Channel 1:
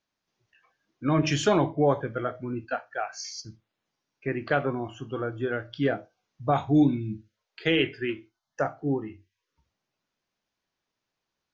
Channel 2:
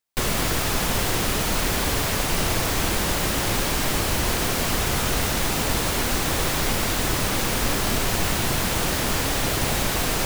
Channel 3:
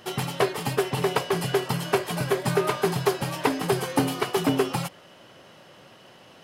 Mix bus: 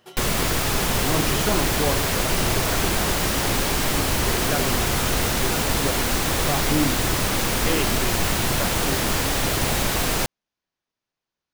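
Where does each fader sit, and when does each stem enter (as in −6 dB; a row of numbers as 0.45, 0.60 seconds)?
−3.5, +1.0, −11.0 decibels; 0.00, 0.00, 0.00 seconds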